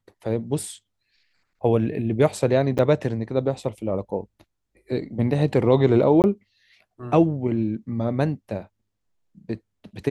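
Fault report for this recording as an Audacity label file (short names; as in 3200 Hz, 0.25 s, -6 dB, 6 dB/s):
2.780000	2.790000	gap 7.9 ms
6.220000	6.240000	gap 19 ms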